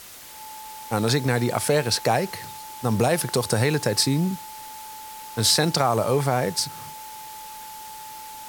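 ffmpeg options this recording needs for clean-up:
-af "bandreject=f=870:w=30,afftdn=nr=30:nf=-39"

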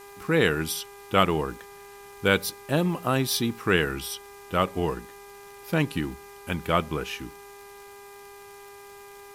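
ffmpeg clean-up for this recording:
-af "adeclick=t=4,bandreject=f=402.6:t=h:w=4,bandreject=f=805.2:t=h:w=4,bandreject=f=1.2078k:t=h:w=4,bandreject=f=1.6104k:t=h:w=4,bandreject=f=2.013k:t=h:w=4,bandreject=f=2.4156k:t=h:w=4,bandreject=f=990:w=30,afwtdn=0.0022"

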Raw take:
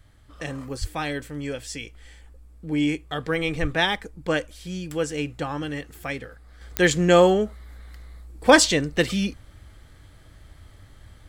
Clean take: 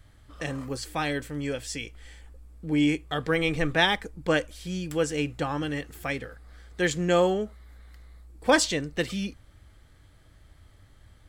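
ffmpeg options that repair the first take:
-filter_complex "[0:a]adeclick=t=4,asplit=3[a][b][c];[a]afade=t=out:st=0.8:d=0.02[d];[b]highpass=f=140:w=0.5412,highpass=f=140:w=1.3066,afade=t=in:st=0.8:d=0.02,afade=t=out:st=0.92:d=0.02[e];[c]afade=t=in:st=0.92:d=0.02[f];[d][e][f]amix=inputs=3:normalize=0,asplit=3[g][h][i];[g]afade=t=out:st=3.61:d=0.02[j];[h]highpass=f=140:w=0.5412,highpass=f=140:w=1.3066,afade=t=in:st=3.61:d=0.02,afade=t=out:st=3.73:d=0.02[k];[i]afade=t=in:st=3.73:d=0.02[l];[j][k][l]amix=inputs=3:normalize=0,asetnsamples=n=441:p=0,asendcmd='6.61 volume volume -6.5dB',volume=0dB"

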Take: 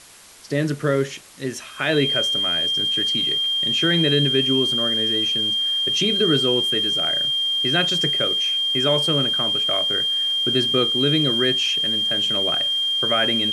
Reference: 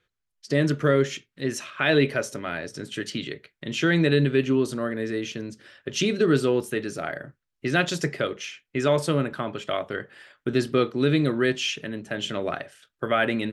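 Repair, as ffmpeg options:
-af "bandreject=f=3.2k:w=30,afwtdn=0.0063"

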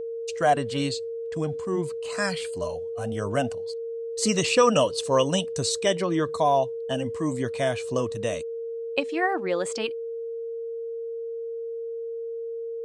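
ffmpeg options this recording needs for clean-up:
-af "bandreject=f=460:w=30"

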